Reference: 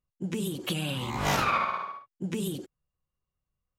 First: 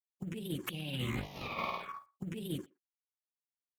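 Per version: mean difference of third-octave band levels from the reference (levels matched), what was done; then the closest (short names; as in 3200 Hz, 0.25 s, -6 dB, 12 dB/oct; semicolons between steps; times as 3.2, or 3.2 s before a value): 6.0 dB: G.711 law mismatch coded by A; envelope phaser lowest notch 250 Hz, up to 1500 Hz, full sweep at -27.5 dBFS; negative-ratio compressor -36 dBFS, ratio -0.5; speakerphone echo 0.12 s, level -26 dB; gain -1.5 dB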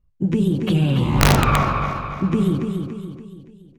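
8.0 dB: RIAA curve playback; notches 60/120/180 Hz; on a send: feedback echo 0.285 s, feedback 45%, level -6 dB; on the sum: wrapped overs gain 12 dB; gain +6 dB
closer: first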